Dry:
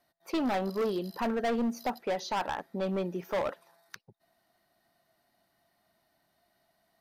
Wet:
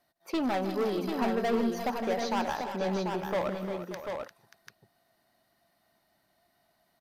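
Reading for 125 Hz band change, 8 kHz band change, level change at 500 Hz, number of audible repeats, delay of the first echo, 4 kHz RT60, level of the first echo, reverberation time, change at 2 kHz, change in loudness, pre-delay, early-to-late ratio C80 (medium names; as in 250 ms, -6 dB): +2.0 dB, +2.0 dB, +2.0 dB, 5, 158 ms, no reverb, -12.5 dB, no reverb, +1.5 dB, +1.0 dB, no reverb, no reverb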